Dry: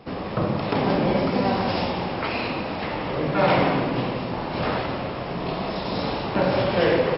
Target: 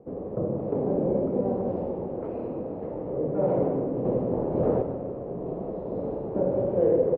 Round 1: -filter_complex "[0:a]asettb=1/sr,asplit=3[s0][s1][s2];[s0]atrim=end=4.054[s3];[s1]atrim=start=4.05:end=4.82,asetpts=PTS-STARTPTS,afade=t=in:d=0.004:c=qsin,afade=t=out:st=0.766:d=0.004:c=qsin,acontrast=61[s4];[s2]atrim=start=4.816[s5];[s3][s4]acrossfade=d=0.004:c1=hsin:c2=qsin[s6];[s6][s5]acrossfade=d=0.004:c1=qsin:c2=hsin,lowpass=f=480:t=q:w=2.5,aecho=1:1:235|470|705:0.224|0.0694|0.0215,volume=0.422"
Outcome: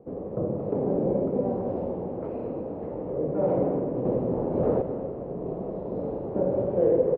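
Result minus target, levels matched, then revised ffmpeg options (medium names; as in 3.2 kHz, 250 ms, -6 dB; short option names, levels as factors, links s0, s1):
echo 86 ms late
-filter_complex "[0:a]asettb=1/sr,asplit=3[s0][s1][s2];[s0]atrim=end=4.054[s3];[s1]atrim=start=4.05:end=4.82,asetpts=PTS-STARTPTS,afade=t=in:d=0.004:c=qsin,afade=t=out:st=0.766:d=0.004:c=qsin,acontrast=61[s4];[s2]atrim=start=4.816[s5];[s3][s4]acrossfade=d=0.004:c1=hsin:c2=qsin[s6];[s6][s5]acrossfade=d=0.004:c1=qsin:c2=hsin,lowpass=f=480:t=q:w=2.5,aecho=1:1:149|298|447:0.224|0.0694|0.0215,volume=0.422"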